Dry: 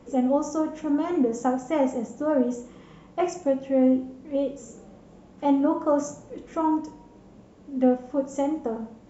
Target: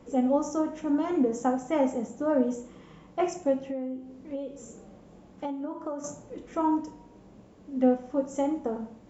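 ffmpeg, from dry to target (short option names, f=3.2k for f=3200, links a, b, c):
-filter_complex "[0:a]asettb=1/sr,asplit=3[a][b][c];[a]atrim=end=3.664[d];[b]atrim=start=3.66:end=6.04,asetpts=PTS-STARTPTS,afade=t=in:d=0.004:c=qsin,afade=t=out:st=2.376:d=0.004:c=qsin,acompressor=threshold=-29dB:ratio=12[e];[c]atrim=start=6.036[f];[d][e]acrossfade=d=0.004:c1=hsin:c2=qsin[g];[g][f]acrossfade=d=0.004:c1=qsin:c2=hsin,volume=-2dB"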